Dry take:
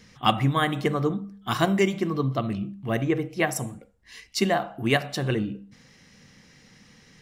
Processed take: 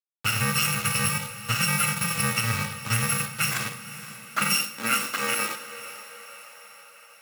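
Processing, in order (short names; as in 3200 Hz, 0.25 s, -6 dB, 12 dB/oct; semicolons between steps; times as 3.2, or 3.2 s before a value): FFT order left unsorted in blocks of 128 samples; low-pass opened by the level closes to 340 Hz, open at -21.5 dBFS; band shelf 1700 Hz +14.5 dB; limiter -12 dBFS, peak gain reduction 11 dB; bit-crush 5-bit; diffused feedback echo 0.518 s, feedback 58%, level -14.5 dB; high-pass sweep 110 Hz -> 560 Hz, 3.23–6.4; two-slope reverb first 0.64 s, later 3.2 s, DRR 7.5 dB; gain -1.5 dB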